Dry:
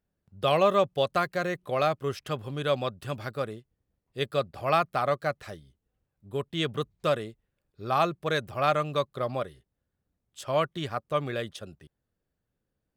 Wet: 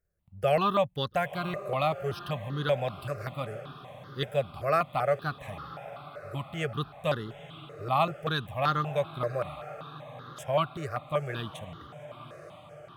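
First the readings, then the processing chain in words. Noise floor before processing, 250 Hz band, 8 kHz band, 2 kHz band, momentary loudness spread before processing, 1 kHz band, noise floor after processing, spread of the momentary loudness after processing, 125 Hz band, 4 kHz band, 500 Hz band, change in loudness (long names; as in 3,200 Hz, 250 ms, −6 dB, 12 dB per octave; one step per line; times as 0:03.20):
−83 dBFS, −2.0 dB, can't be measured, −1.5 dB, 14 LU, −1.5 dB, −51 dBFS, 17 LU, +1.5 dB, −2.5 dB, −2.5 dB, −2.0 dB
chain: low-shelf EQ 150 Hz +4 dB
on a send: feedback delay with all-pass diffusion 931 ms, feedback 59%, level −14.5 dB
on the sum: step-sequenced phaser 5.2 Hz 900–2,400 Hz
level +1 dB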